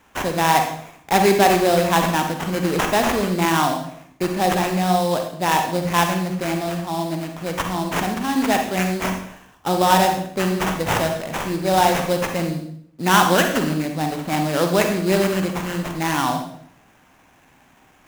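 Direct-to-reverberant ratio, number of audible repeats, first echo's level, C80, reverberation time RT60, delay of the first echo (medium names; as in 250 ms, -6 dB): 4.0 dB, no echo, no echo, 9.0 dB, 0.65 s, no echo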